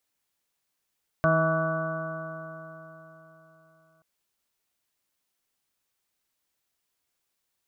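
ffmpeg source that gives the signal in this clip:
-f lavfi -i "aevalsrc='0.0668*pow(10,-3*t/3.78)*sin(2*PI*160.06*t)+0.0266*pow(10,-3*t/3.78)*sin(2*PI*320.5*t)+0.0119*pow(10,-3*t/3.78)*sin(2*PI*481.68*t)+0.0841*pow(10,-3*t/3.78)*sin(2*PI*643.98*t)+0.00841*pow(10,-3*t/3.78)*sin(2*PI*807.76*t)+0.00841*pow(10,-3*t/3.78)*sin(2*PI*973.39*t)+0.0531*pow(10,-3*t/3.78)*sin(2*PI*1141.2*t)+0.0168*pow(10,-3*t/3.78)*sin(2*PI*1311.56*t)+0.0473*pow(10,-3*t/3.78)*sin(2*PI*1484.79*t)':d=2.78:s=44100"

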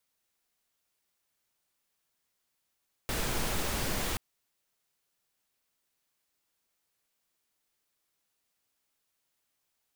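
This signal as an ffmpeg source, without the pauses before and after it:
-f lavfi -i "anoisesrc=c=pink:a=0.136:d=1.08:r=44100:seed=1"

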